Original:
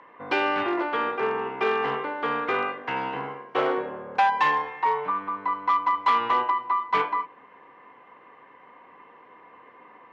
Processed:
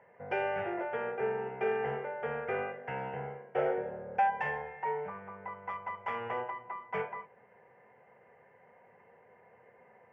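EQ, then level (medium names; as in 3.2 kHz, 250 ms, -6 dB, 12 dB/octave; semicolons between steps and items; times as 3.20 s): high-pass 140 Hz 6 dB/octave; tilt EQ -4 dB/octave; static phaser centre 1.1 kHz, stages 6; -5.5 dB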